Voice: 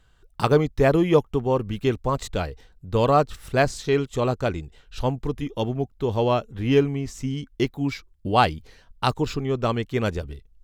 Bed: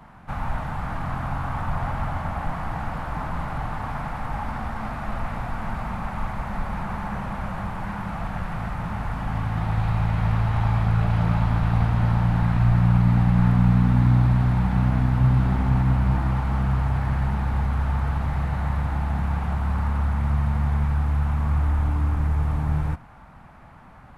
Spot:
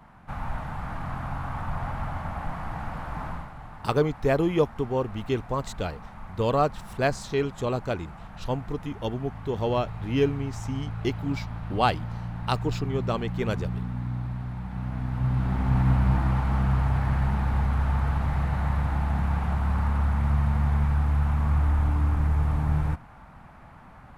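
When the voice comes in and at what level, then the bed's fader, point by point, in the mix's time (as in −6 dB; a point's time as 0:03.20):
3.45 s, −4.5 dB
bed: 0:03.31 −4.5 dB
0:03.53 −13.5 dB
0:14.64 −13.5 dB
0:15.87 −1 dB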